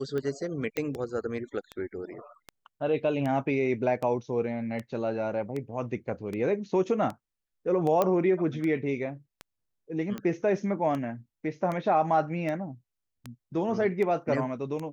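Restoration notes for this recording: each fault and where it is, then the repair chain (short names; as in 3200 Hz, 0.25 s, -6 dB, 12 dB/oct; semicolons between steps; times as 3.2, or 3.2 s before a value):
tick 78 rpm -22 dBFS
0.77 pop -16 dBFS
8.02 pop -12 dBFS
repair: de-click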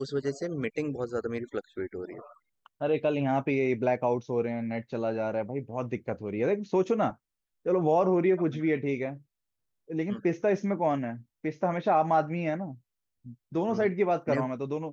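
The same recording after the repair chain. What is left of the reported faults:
none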